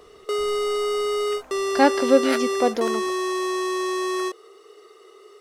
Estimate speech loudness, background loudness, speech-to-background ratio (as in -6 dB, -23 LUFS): -22.0 LUFS, -25.0 LUFS, 3.0 dB